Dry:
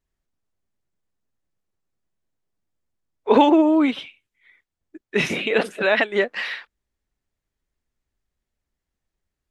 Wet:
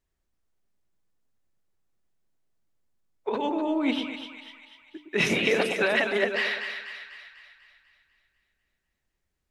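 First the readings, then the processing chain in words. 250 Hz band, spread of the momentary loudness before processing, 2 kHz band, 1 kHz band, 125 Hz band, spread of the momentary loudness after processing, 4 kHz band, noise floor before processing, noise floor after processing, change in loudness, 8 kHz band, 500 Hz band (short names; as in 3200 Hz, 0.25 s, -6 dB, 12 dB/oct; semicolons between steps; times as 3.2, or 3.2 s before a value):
-9.0 dB, 15 LU, -2.0 dB, -10.0 dB, -2.0 dB, 18 LU, -1.0 dB, -85 dBFS, -80 dBFS, -6.5 dB, +1.0 dB, -6.5 dB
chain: negative-ratio compressor -21 dBFS, ratio -1; notches 50/100/150/200/250/300 Hz; split-band echo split 980 Hz, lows 0.112 s, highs 0.247 s, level -7 dB; gain -3.5 dB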